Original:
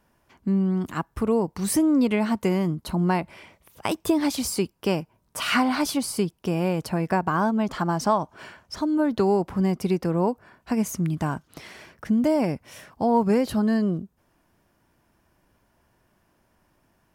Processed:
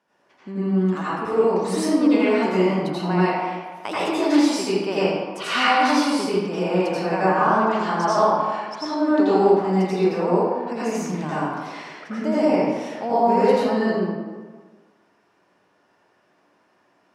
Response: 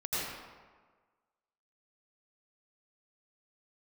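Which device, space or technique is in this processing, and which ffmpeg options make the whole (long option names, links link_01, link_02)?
supermarket ceiling speaker: -filter_complex "[0:a]highpass=300,lowpass=6200[link_01];[1:a]atrim=start_sample=2205[link_02];[link_01][link_02]afir=irnorm=-1:irlink=0"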